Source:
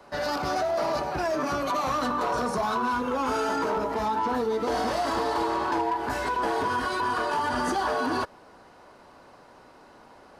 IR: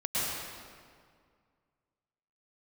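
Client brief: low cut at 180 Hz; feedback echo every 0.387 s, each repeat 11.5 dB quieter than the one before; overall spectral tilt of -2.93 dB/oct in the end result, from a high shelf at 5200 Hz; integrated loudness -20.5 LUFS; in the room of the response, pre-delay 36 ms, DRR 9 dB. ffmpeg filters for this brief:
-filter_complex "[0:a]highpass=180,highshelf=f=5.2k:g=7,aecho=1:1:387|774|1161:0.266|0.0718|0.0194,asplit=2[a][b];[1:a]atrim=start_sample=2205,adelay=36[c];[b][c]afir=irnorm=-1:irlink=0,volume=-17.5dB[d];[a][d]amix=inputs=2:normalize=0,volume=5.5dB"

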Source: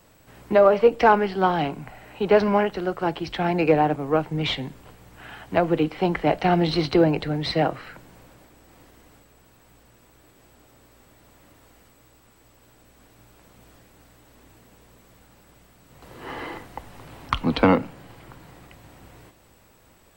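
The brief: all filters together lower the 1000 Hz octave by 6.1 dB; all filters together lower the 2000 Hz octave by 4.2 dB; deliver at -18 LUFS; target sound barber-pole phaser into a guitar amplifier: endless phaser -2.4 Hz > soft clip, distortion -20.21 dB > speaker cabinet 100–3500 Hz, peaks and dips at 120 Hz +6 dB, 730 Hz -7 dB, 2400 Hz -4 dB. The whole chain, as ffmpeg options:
-filter_complex "[0:a]equalizer=f=1k:t=o:g=-3,equalizer=f=2k:t=o:g=-3,asplit=2[a][b];[b]afreqshift=-2.4[c];[a][c]amix=inputs=2:normalize=1,asoftclip=threshold=-11dB,highpass=100,equalizer=f=120:t=q:w=4:g=6,equalizer=f=730:t=q:w=4:g=-7,equalizer=f=2.4k:t=q:w=4:g=-4,lowpass=f=3.5k:w=0.5412,lowpass=f=3.5k:w=1.3066,volume=9.5dB"

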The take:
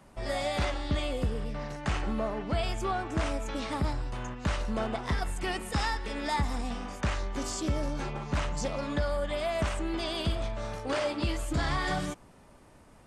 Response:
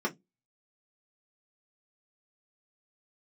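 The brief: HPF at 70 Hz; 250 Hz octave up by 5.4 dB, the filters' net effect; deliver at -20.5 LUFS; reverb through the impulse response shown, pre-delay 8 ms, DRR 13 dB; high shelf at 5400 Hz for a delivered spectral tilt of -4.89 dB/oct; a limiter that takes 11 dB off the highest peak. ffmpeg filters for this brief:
-filter_complex "[0:a]highpass=70,equalizer=f=250:t=o:g=7,highshelf=f=5.4k:g=-5,alimiter=level_in=1dB:limit=-24dB:level=0:latency=1,volume=-1dB,asplit=2[a][b];[1:a]atrim=start_sample=2205,adelay=8[c];[b][c]afir=irnorm=-1:irlink=0,volume=-20.5dB[d];[a][d]amix=inputs=2:normalize=0,volume=13dB"

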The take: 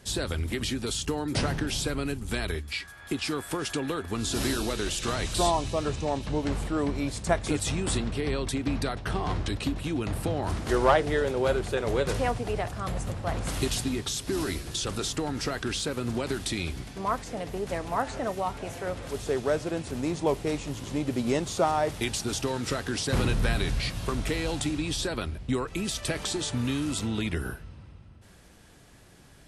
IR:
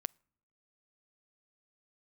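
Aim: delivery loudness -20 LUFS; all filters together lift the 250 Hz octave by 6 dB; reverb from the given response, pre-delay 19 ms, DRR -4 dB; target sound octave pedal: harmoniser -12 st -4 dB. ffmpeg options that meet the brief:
-filter_complex "[0:a]equalizer=f=250:t=o:g=7.5,asplit=2[a][b];[1:a]atrim=start_sample=2205,adelay=19[c];[b][c]afir=irnorm=-1:irlink=0,volume=6dB[d];[a][d]amix=inputs=2:normalize=0,asplit=2[e][f];[f]asetrate=22050,aresample=44100,atempo=2,volume=-4dB[g];[e][g]amix=inputs=2:normalize=0"

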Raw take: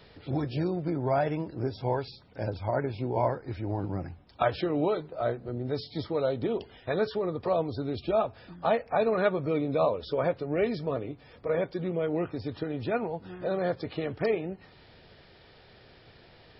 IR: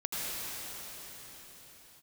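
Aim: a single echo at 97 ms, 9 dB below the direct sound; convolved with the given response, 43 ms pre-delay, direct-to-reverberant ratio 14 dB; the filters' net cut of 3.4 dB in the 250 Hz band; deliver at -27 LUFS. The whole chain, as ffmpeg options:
-filter_complex "[0:a]equalizer=f=250:t=o:g=-5,aecho=1:1:97:0.355,asplit=2[a][b];[1:a]atrim=start_sample=2205,adelay=43[c];[b][c]afir=irnorm=-1:irlink=0,volume=-21dB[d];[a][d]amix=inputs=2:normalize=0,volume=4dB"

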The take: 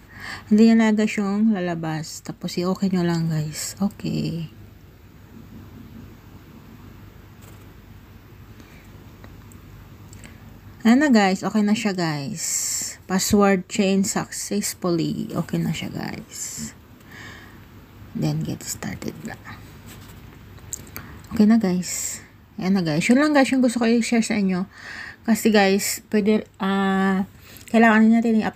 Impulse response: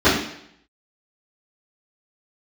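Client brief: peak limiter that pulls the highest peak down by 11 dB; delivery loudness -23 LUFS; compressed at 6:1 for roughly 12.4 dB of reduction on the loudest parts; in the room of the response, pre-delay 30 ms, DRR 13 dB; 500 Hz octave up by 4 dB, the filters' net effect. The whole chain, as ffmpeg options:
-filter_complex "[0:a]equalizer=f=500:t=o:g=5,acompressor=threshold=-23dB:ratio=6,alimiter=limit=-21.5dB:level=0:latency=1,asplit=2[a][b];[1:a]atrim=start_sample=2205,adelay=30[c];[b][c]afir=irnorm=-1:irlink=0,volume=-37.5dB[d];[a][d]amix=inputs=2:normalize=0,volume=8dB"

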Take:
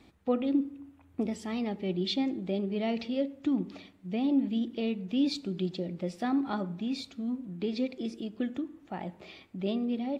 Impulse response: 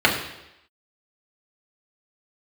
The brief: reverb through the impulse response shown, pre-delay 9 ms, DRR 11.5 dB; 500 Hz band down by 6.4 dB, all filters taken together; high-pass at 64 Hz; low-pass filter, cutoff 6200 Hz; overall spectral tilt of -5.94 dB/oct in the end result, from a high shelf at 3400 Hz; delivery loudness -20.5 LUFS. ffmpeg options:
-filter_complex "[0:a]highpass=64,lowpass=6.2k,equalizer=f=500:t=o:g=-8,highshelf=f=3.4k:g=-8.5,asplit=2[a][b];[1:a]atrim=start_sample=2205,adelay=9[c];[b][c]afir=irnorm=-1:irlink=0,volume=-33dB[d];[a][d]amix=inputs=2:normalize=0,volume=14dB"

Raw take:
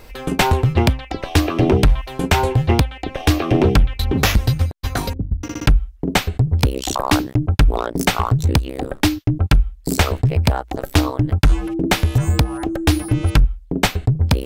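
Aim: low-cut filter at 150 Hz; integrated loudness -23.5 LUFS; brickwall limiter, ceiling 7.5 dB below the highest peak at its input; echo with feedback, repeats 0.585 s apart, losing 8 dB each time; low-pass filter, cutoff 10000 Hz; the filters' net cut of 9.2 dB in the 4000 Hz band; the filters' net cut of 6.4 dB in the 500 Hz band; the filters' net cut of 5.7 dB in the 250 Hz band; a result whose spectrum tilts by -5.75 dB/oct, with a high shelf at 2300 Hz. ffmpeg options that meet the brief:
-af "highpass=150,lowpass=10k,equalizer=f=250:t=o:g=-4.5,equalizer=f=500:t=o:g=-6.5,highshelf=f=2.3k:g=-6.5,equalizer=f=4k:t=o:g=-6,alimiter=limit=-14dB:level=0:latency=1,aecho=1:1:585|1170|1755|2340|2925:0.398|0.159|0.0637|0.0255|0.0102,volume=3.5dB"

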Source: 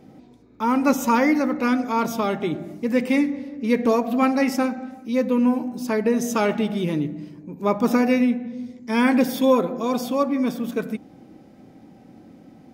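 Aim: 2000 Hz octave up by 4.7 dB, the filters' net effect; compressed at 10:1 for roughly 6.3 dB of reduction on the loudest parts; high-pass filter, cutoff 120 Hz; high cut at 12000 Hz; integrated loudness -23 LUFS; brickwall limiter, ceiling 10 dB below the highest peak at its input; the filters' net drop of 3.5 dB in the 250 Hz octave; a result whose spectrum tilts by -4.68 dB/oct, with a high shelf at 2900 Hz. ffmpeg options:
-af "highpass=120,lowpass=12k,equalizer=f=250:t=o:g=-3.5,equalizer=f=2k:t=o:g=9,highshelf=f=2.9k:g=-8.5,acompressor=threshold=-20dB:ratio=10,volume=7.5dB,alimiter=limit=-13.5dB:level=0:latency=1"

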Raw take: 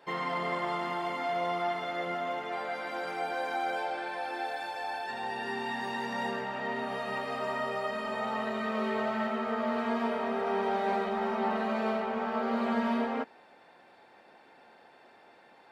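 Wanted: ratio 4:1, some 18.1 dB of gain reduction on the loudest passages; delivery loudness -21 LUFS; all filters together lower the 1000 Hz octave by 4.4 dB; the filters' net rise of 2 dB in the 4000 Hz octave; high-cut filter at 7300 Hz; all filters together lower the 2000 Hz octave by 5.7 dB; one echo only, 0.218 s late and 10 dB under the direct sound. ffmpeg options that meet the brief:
-af "lowpass=7.3k,equalizer=f=1k:t=o:g=-5,equalizer=f=2k:t=o:g=-6.5,equalizer=f=4k:t=o:g=5.5,acompressor=threshold=-50dB:ratio=4,aecho=1:1:218:0.316,volume=28.5dB"

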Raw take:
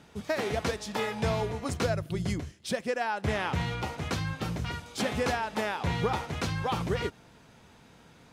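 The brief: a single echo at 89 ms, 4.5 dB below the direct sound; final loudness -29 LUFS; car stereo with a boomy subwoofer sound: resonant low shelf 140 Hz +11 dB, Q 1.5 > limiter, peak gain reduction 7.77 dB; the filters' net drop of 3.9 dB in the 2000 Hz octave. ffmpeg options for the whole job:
-af "lowshelf=f=140:t=q:w=1.5:g=11,equalizer=f=2k:t=o:g=-5,aecho=1:1:89:0.596,volume=-1.5dB,alimiter=limit=-18dB:level=0:latency=1"

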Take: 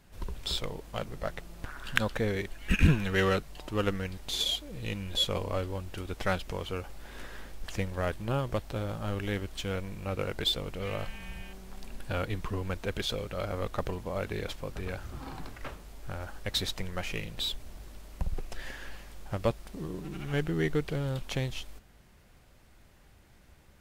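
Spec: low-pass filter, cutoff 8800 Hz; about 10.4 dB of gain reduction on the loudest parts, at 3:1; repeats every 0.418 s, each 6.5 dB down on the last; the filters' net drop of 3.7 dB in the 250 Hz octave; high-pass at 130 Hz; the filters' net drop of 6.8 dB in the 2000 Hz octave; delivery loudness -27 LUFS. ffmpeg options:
-af "highpass=130,lowpass=8.8k,equalizer=f=250:t=o:g=-4.5,equalizer=f=2k:t=o:g=-9,acompressor=threshold=-37dB:ratio=3,aecho=1:1:418|836|1254|1672|2090|2508:0.473|0.222|0.105|0.0491|0.0231|0.0109,volume=14.5dB"

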